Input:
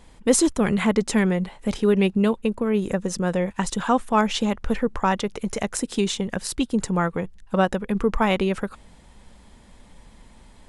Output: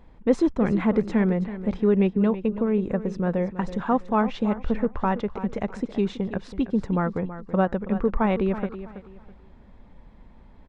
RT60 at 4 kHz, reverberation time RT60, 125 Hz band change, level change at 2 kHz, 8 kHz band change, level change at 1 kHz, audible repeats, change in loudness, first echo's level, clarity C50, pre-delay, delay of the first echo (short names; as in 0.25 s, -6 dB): none, none, -0.5 dB, -6.5 dB, under -25 dB, -3.5 dB, 2, -1.5 dB, -13.0 dB, none, none, 0.327 s